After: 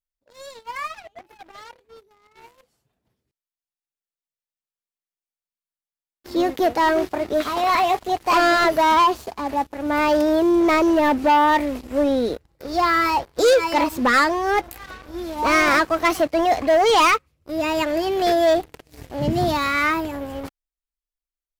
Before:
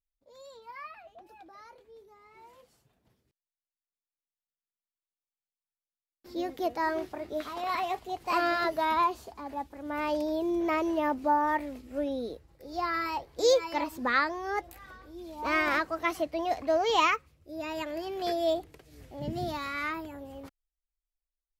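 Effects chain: waveshaping leveller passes 3; trim +2.5 dB

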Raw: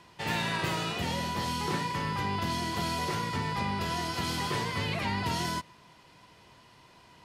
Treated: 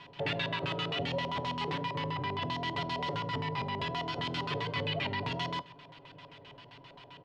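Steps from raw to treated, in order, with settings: comb 7.1 ms, depth 93%; compression, threshold -32 dBFS, peak gain reduction 9 dB; LFO low-pass square 7.6 Hz 570–3300 Hz; echo from a far wall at 220 m, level -29 dB; on a send at -18 dB: reverberation RT60 0.55 s, pre-delay 3 ms

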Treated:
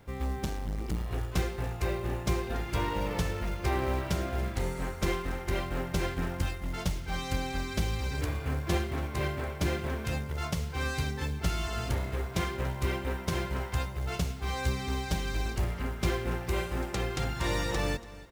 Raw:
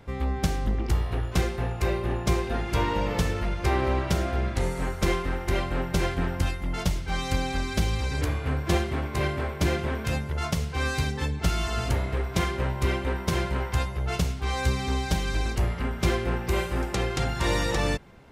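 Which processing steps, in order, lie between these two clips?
de-hum 231.2 Hz, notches 5; companded quantiser 6-bit; on a send: feedback delay 285 ms, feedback 32%, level -18 dB; 0.40–1.10 s: on the sum: transformer saturation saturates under 220 Hz; trim -5 dB

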